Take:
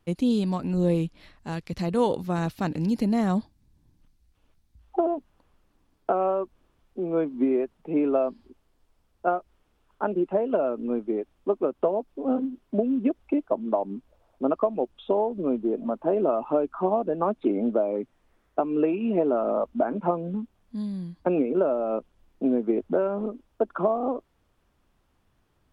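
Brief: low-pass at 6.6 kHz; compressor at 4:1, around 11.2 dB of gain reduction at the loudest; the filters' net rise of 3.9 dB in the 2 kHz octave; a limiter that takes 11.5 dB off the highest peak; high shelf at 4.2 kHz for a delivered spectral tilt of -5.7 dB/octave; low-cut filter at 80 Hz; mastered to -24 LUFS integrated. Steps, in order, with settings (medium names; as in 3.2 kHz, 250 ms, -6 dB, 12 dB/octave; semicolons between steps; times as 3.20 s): high-pass 80 Hz; low-pass 6.6 kHz; peaking EQ 2 kHz +5 dB; treble shelf 4.2 kHz +3.5 dB; compression 4:1, threshold -32 dBFS; trim +13.5 dB; peak limiter -14 dBFS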